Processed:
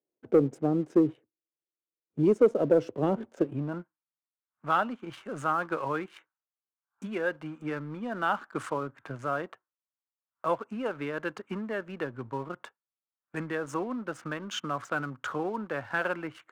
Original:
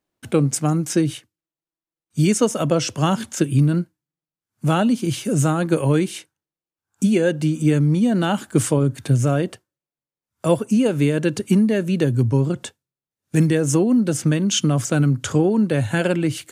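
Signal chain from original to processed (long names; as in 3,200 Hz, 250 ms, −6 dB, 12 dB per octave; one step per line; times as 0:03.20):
adaptive Wiener filter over 9 samples
band-pass filter sweep 430 Hz → 1,200 Hz, 0:03.24–0:03.94
leveller curve on the samples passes 1
level −1.5 dB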